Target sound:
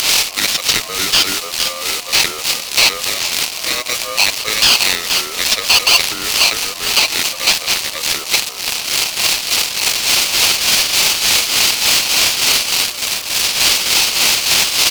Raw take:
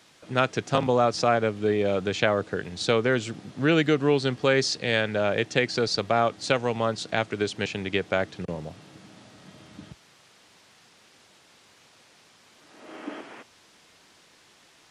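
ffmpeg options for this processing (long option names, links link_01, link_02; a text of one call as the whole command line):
ffmpeg -i in.wav -filter_complex "[0:a]aeval=exprs='val(0)+0.5*0.0316*sgn(val(0))':channel_layout=same,acrossover=split=5400[link_01][link_02];[link_02]acompressor=threshold=-48dB:ratio=4:attack=1:release=60[link_03];[link_01][link_03]amix=inputs=2:normalize=0,asplit=4[link_04][link_05][link_06][link_07];[link_05]adelay=463,afreqshift=56,volume=-19dB[link_08];[link_06]adelay=926,afreqshift=112,volume=-26.1dB[link_09];[link_07]adelay=1389,afreqshift=168,volume=-33.3dB[link_10];[link_04][link_08][link_09][link_10]amix=inputs=4:normalize=0,acrossover=split=610[link_11][link_12];[link_11]aeval=exprs='val(0)*(1-0.7/2+0.7/2*cos(2*PI*3.4*n/s))':channel_layout=same[link_13];[link_12]aeval=exprs='val(0)*(1-0.7/2-0.7/2*cos(2*PI*3.4*n/s))':channel_layout=same[link_14];[link_13][link_14]amix=inputs=2:normalize=0,acompressor=mode=upward:threshold=-33dB:ratio=2.5,asetrate=35002,aresample=44100,atempo=1.25992,equalizer=frequency=110:width_type=o:width=1.1:gain=-13,aexciter=amount=8.7:drive=9.5:freq=2800,highshelf=frequency=2700:width_type=q:width=3:gain=6.5,alimiter=level_in=-1.5dB:limit=-1dB:release=50:level=0:latency=1,aeval=exprs='val(0)*sgn(sin(2*PI*860*n/s))':channel_layout=same,volume=-1dB" out.wav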